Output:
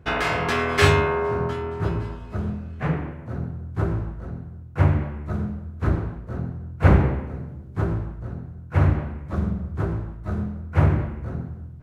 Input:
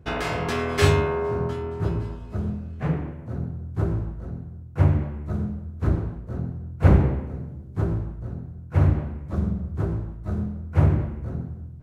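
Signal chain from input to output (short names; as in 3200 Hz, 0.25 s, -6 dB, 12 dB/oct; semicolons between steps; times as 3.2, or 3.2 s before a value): bell 1700 Hz +6.5 dB 2.4 oct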